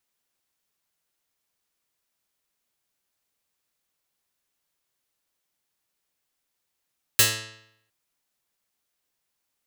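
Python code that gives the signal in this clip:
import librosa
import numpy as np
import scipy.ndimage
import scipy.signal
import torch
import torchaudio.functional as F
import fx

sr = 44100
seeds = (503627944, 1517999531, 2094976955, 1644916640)

y = fx.pluck(sr, length_s=0.71, note=45, decay_s=0.75, pick=0.43, brightness='medium')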